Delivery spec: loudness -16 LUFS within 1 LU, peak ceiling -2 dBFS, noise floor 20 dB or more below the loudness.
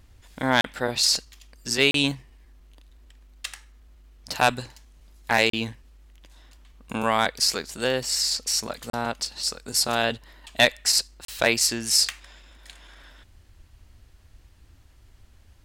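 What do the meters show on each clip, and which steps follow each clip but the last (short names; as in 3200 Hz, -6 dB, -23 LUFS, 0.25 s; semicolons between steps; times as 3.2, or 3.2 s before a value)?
dropouts 5; longest dropout 33 ms; loudness -23.0 LUFS; peak -7.0 dBFS; loudness target -16.0 LUFS
-> interpolate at 0.61/1.91/5.5/8.9/11.25, 33 ms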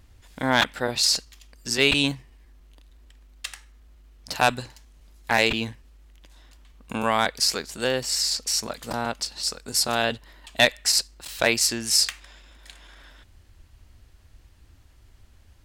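dropouts 0; loudness -23.0 LUFS; peak -7.0 dBFS; loudness target -16.0 LUFS
-> gain +7 dB; limiter -2 dBFS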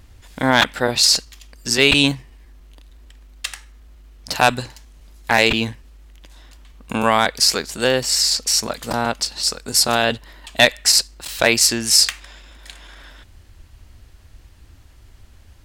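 loudness -16.5 LUFS; peak -2.0 dBFS; noise floor -48 dBFS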